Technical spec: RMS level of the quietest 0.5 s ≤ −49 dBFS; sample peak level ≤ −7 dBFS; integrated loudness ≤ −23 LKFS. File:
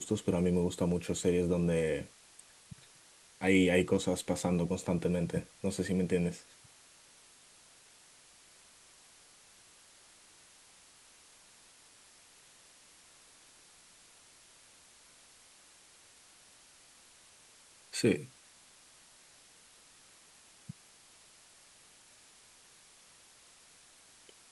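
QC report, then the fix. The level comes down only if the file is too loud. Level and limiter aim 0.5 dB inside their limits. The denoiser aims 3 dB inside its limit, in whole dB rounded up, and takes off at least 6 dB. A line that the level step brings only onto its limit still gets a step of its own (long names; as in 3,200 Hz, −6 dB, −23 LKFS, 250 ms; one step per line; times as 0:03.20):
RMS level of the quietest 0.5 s −60 dBFS: in spec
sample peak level −14.0 dBFS: in spec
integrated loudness −31.5 LKFS: in spec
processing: no processing needed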